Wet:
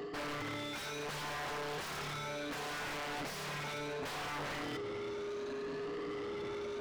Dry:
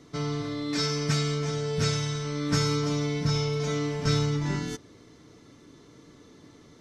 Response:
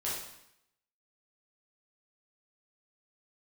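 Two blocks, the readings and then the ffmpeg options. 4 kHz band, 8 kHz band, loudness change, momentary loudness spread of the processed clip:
-10.5 dB, -12.0 dB, -12.0 dB, 2 LU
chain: -filter_complex "[0:a]afftfilt=real='re*pow(10,24/40*sin(2*PI*(1.5*log(max(b,1)*sr/1024/100)/log(2)-(0.68)*(pts-256)/sr)))':imag='im*pow(10,24/40*sin(2*PI*(1.5*log(max(b,1)*sr/1024/100)/log(2)-(0.68)*(pts-256)/sr)))':win_size=1024:overlap=0.75,lowpass=4500,acontrast=42,bandreject=f=1000:w=6.3,aeval=exprs='0.631*(cos(1*acos(clip(val(0)/0.631,-1,1)))-cos(1*PI/2))+0.00794*(cos(2*acos(clip(val(0)/0.631,-1,1)))-cos(2*PI/2))+0.158*(cos(3*acos(clip(val(0)/0.631,-1,1)))-cos(3*PI/2))+0.00794*(cos(6*acos(clip(val(0)/0.631,-1,1)))-cos(6*PI/2))':c=same,alimiter=limit=0.355:level=0:latency=1:release=323,aeval=exprs='(mod(18.8*val(0)+1,2)-1)/18.8':c=same,highshelf=f=3300:g=-5.5,aeval=exprs='val(0)+0.00316*sin(2*PI*410*n/s)':c=same,areverse,acompressor=threshold=0.00631:ratio=8,areverse,asplit=2[s0][s1];[s1]highpass=f=720:p=1,volume=31.6,asoftclip=type=tanh:threshold=0.0168[s2];[s0][s2]amix=inputs=2:normalize=0,lowpass=f=2600:p=1,volume=0.501,volume=1.26"

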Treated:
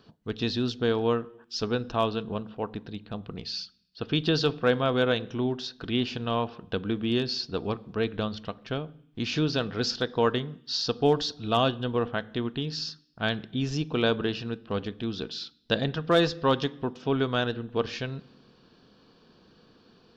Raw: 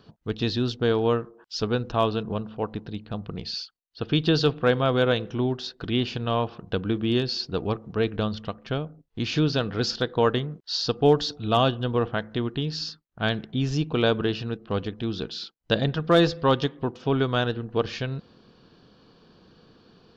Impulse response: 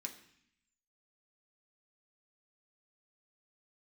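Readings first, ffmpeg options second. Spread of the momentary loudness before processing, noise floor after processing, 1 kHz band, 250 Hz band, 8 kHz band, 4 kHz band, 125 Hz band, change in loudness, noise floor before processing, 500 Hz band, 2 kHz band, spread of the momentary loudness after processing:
11 LU, -60 dBFS, -2.5 dB, -2.5 dB, no reading, -1.5 dB, -5.0 dB, -3.0 dB, -60 dBFS, -3.0 dB, -1.5 dB, 11 LU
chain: -filter_complex "[0:a]asplit=2[s0][s1];[1:a]atrim=start_sample=2205[s2];[s1][s2]afir=irnorm=-1:irlink=0,volume=0.376[s3];[s0][s3]amix=inputs=2:normalize=0,volume=0.708"

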